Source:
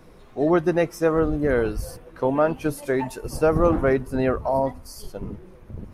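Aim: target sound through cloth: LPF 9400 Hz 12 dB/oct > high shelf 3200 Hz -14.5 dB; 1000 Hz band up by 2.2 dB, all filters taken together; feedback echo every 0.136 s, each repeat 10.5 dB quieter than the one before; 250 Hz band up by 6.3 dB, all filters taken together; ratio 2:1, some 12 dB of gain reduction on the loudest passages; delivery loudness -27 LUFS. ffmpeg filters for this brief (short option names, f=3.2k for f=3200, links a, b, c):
-af "equalizer=f=250:t=o:g=8.5,equalizer=f=1k:t=o:g=4,acompressor=threshold=-34dB:ratio=2,lowpass=9.4k,highshelf=f=3.2k:g=-14.5,aecho=1:1:136|272|408:0.299|0.0896|0.0269,volume=3.5dB"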